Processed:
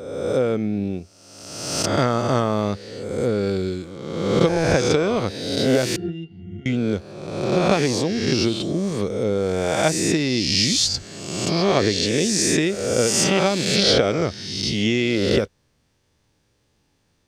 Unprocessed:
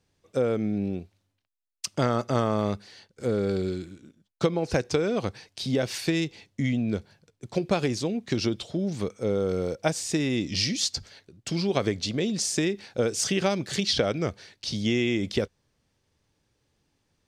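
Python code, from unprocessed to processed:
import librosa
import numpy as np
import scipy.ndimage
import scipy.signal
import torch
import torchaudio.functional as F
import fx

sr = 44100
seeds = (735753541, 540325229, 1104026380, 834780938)

y = fx.spec_swells(x, sr, rise_s=1.29)
y = fx.octave_resonator(y, sr, note='F', decay_s=0.15, at=(5.96, 6.66))
y = y * librosa.db_to_amplitude(3.5)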